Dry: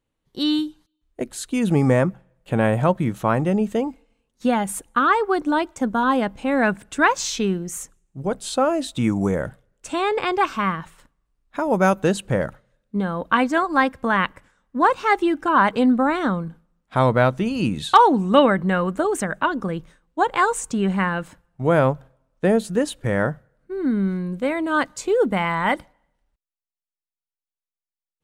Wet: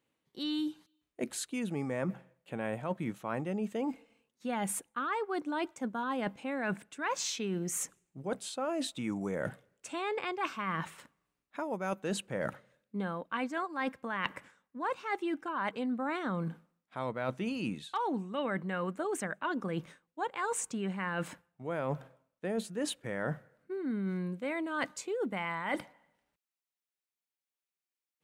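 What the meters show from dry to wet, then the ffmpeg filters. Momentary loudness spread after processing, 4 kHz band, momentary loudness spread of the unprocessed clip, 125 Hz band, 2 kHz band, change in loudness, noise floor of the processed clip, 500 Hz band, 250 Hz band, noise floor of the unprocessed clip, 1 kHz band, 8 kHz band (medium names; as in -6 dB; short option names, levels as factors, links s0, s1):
7 LU, -11.5 dB, 11 LU, -16.0 dB, -13.5 dB, -15.0 dB, under -85 dBFS, -15.0 dB, -14.0 dB, under -85 dBFS, -16.5 dB, -7.0 dB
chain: -af "highpass=160,equalizer=f=2300:w=1.9:g=4,areverse,acompressor=threshold=0.0251:ratio=8,areverse"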